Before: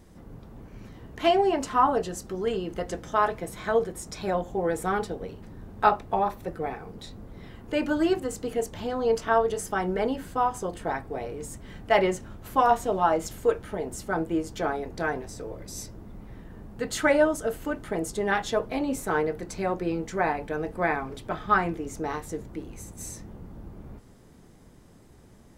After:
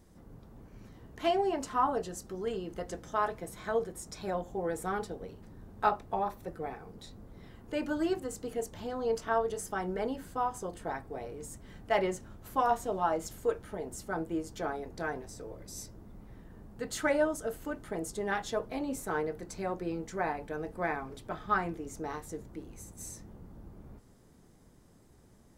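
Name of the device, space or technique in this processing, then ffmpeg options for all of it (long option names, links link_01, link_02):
exciter from parts: -filter_complex "[0:a]asplit=2[link_01][link_02];[link_02]highpass=2400,asoftclip=type=tanh:threshold=-28dB,highpass=2100,volume=-8.5dB[link_03];[link_01][link_03]amix=inputs=2:normalize=0,volume=-7dB"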